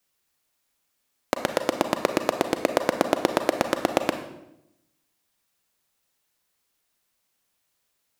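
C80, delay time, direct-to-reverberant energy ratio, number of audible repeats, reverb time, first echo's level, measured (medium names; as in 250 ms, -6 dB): 11.0 dB, no echo, 6.5 dB, no echo, 0.85 s, no echo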